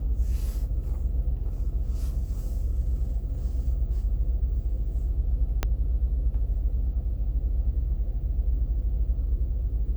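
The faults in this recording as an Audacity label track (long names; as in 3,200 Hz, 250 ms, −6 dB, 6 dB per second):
5.630000	5.630000	click −11 dBFS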